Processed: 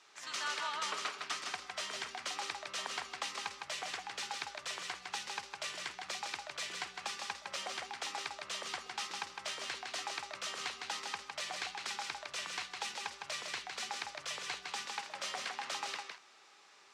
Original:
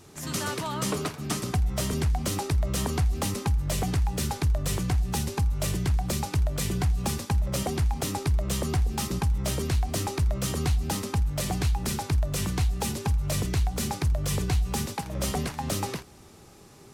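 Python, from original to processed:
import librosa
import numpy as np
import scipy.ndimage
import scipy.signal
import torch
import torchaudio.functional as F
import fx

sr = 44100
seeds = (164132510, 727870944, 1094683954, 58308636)

p1 = scipy.signal.sosfilt(scipy.signal.butter(2, 1300.0, 'highpass', fs=sr, output='sos'), x)
p2 = fx.air_absorb(p1, sr, metres=130.0)
y = p2 + fx.echo_single(p2, sr, ms=158, db=-4.5, dry=0)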